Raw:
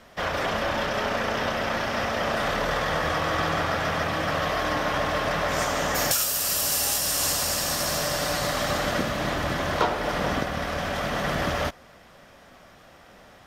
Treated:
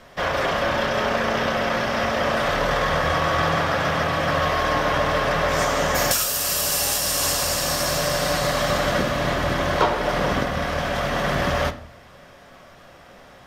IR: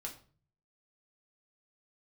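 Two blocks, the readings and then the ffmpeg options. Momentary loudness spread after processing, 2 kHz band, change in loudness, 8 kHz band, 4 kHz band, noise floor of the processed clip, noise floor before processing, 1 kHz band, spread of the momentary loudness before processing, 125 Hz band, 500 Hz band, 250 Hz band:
3 LU, +4.0 dB, +3.5 dB, +2.0 dB, +3.0 dB, −47 dBFS, −51 dBFS, +4.0 dB, 5 LU, +5.0 dB, +5.0 dB, +3.5 dB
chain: -filter_complex "[0:a]asplit=2[link_01][link_02];[1:a]atrim=start_sample=2205,asetrate=36162,aresample=44100,highshelf=frequency=8600:gain=-11.5[link_03];[link_02][link_03]afir=irnorm=-1:irlink=0,volume=-1.5dB[link_04];[link_01][link_04]amix=inputs=2:normalize=0"

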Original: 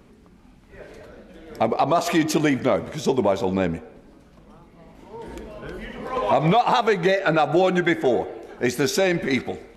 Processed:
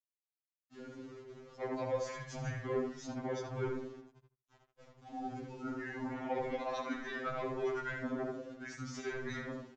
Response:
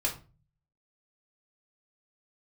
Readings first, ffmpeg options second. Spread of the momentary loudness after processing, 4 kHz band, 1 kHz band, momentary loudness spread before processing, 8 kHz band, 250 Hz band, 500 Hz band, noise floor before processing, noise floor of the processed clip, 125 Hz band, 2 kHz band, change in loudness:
13 LU, −21.5 dB, −19.5 dB, 17 LU, −19.0 dB, −17.5 dB, −17.0 dB, −51 dBFS, below −85 dBFS, −15.5 dB, −16.0 dB, −18.5 dB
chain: -filter_complex "[0:a]afftdn=noise_reduction=21:noise_floor=-39,aexciter=amount=10.9:drive=7.2:freq=4900,equalizer=frequency=4900:width=0.57:gain=3.5,areverse,acompressor=threshold=-25dB:ratio=16,areverse,asoftclip=type=tanh:threshold=-28dB,flanger=delay=7.5:depth=9.7:regen=65:speed=0.62:shape=triangular,acrossover=split=270 2700:gain=0.0891 1 0.141[link_01][link_02][link_03];[link_01][link_02][link_03]amix=inputs=3:normalize=0,afreqshift=-160,aeval=exprs='val(0)*gte(abs(val(0)),0.00158)':channel_layout=same,asplit=2[link_04][link_05];[link_05]adelay=76,lowpass=frequency=2400:poles=1,volume=-3dB,asplit=2[link_06][link_07];[link_07]adelay=76,lowpass=frequency=2400:poles=1,volume=0.18,asplit=2[link_08][link_09];[link_09]adelay=76,lowpass=frequency=2400:poles=1,volume=0.18[link_10];[link_04][link_06][link_08][link_10]amix=inputs=4:normalize=0,aresample=16000,aresample=44100,afftfilt=real='re*2.45*eq(mod(b,6),0)':imag='im*2.45*eq(mod(b,6),0)':win_size=2048:overlap=0.75,volume=3.5dB"

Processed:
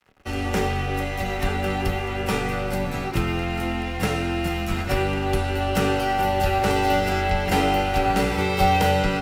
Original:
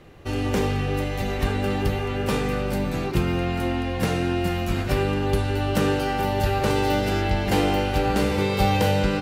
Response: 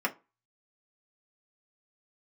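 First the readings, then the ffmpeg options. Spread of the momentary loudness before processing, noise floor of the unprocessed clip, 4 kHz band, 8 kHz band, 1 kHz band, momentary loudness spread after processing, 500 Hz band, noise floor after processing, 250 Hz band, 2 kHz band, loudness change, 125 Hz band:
5 LU, −27 dBFS, +1.0 dB, +1.5 dB, +4.0 dB, 6 LU, −0.5 dB, −28 dBFS, −1.5 dB, +3.0 dB, +0.5 dB, −2.0 dB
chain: -filter_complex "[0:a]aeval=exprs='sgn(val(0))*max(abs(val(0))-0.00631,0)':channel_layout=same,afreqshift=-13,asplit=2[link_01][link_02];[1:a]atrim=start_sample=2205,lowshelf=frequency=180:gain=-11.5[link_03];[link_02][link_03]afir=irnorm=-1:irlink=0,volume=-11.5dB[link_04];[link_01][link_04]amix=inputs=2:normalize=0"

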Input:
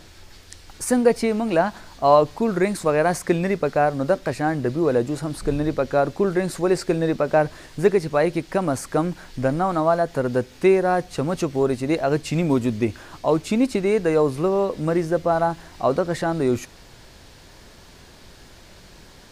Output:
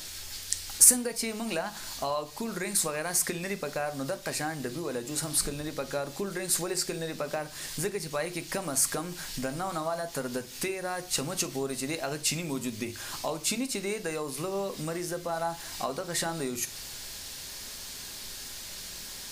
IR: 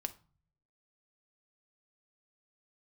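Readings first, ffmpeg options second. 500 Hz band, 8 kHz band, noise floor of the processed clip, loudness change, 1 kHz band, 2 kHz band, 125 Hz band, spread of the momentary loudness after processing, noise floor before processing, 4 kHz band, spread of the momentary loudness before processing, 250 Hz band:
−14.0 dB, +10.5 dB, −43 dBFS, −8.5 dB, −12.0 dB, −6.5 dB, −13.0 dB, 11 LU, −47 dBFS, +3.5 dB, 6 LU, −13.0 dB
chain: -filter_complex "[0:a]acompressor=threshold=-27dB:ratio=6,crystalizer=i=9:c=0[link_01];[1:a]atrim=start_sample=2205[link_02];[link_01][link_02]afir=irnorm=-1:irlink=0,volume=-4.5dB"

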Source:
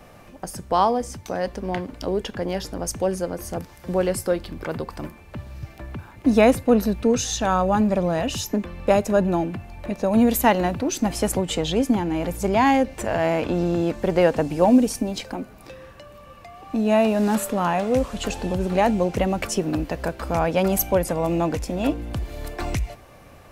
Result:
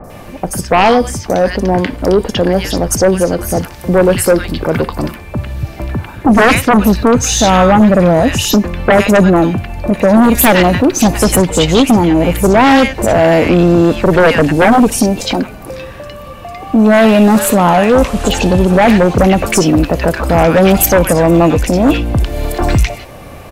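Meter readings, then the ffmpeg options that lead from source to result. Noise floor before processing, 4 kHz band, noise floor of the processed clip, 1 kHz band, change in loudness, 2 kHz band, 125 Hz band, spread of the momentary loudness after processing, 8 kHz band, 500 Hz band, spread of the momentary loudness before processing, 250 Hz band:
−47 dBFS, +13.5 dB, −31 dBFS, +11.5 dB, +12.0 dB, +15.5 dB, +14.0 dB, 13 LU, +13.0 dB, +11.5 dB, 14 LU, +12.0 dB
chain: -filter_complex "[0:a]acrossover=split=1400|5700[link_01][link_02][link_03];[link_03]adelay=40[link_04];[link_02]adelay=100[link_05];[link_01][link_05][link_04]amix=inputs=3:normalize=0,aeval=exprs='0.531*sin(PI/2*3.16*val(0)/0.531)':channel_layout=same,volume=2dB"

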